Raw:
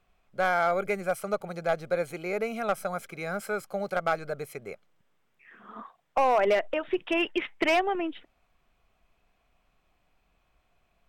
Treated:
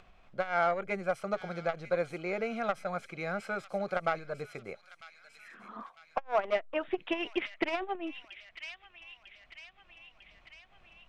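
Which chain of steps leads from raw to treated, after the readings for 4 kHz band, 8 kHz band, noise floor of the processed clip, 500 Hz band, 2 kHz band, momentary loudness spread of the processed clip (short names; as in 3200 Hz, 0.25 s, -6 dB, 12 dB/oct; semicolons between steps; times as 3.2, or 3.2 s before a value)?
-5.5 dB, under -10 dB, -63 dBFS, -5.0 dB, -5.0 dB, 22 LU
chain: LPF 4900 Hz 12 dB/oct; notch 420 Hz, Q 12; thin delay 0.949 s, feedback 43%, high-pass 2700 Hz, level -9 dB; upward compressor, threshold -46 dBFS; core saturation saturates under 330 Hz; gain -1.5 dB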